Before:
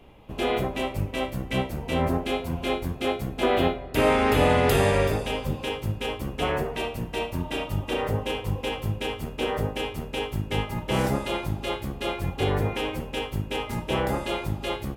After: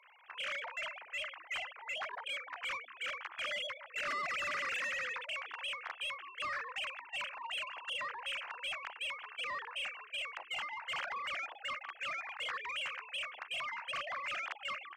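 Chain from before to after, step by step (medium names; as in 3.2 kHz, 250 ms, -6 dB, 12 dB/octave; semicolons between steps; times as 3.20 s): formants replaced by sine waves; high-pass 1.1 kHz 24 dB/octave; in parallel at +2.5 dB: peak limiter -29 dBFS, peak gain reduction 9.5 dB; on the sum: saturation -25 dBFS, distortion -15 dB; trim -8 dB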